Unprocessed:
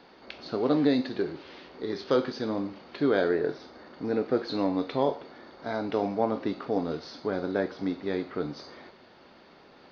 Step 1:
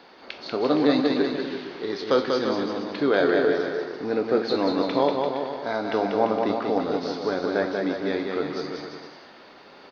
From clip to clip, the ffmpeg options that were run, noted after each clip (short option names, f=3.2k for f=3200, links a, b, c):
-filter_complex "[0:a]lowshelf=f=240:g=-10,asplit=2[a][b];[b]aecho=0:1:190|342|463.6|560.9|638.7:0.631|0.398|0.251|0.158|0.1[c];[a][c]amix=inputs=2:normalize=0,volume=5.5dB"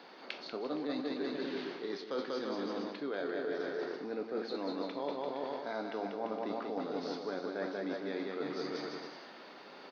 -af "highpass=f=160:w=0.5412,highpass=f=160:w=1.3066,areverse,acompressor=threshold=-31dB:ratio=6,areverse,volume=-3.5dB"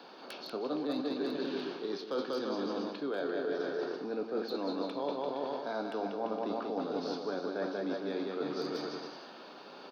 -filter_complex "[0:a]equalizer=f=2k:w=6.3:g=-14.5,acrossover=split=100|390|1500[a][b][c][d];[d]aeval=exprs='0.01*(abs(mod(val(0)/0.01+3,4)-2)-1)':c=same[e];[a][b][c][e]amix=inputs=4:normalize=0,volume=2.5dB"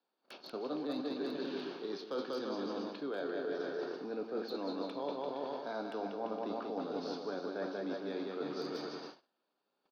-af "agate=range=-31dB:threshold=-44dB:ratio=16:detection=peak,volume=-3.5dB"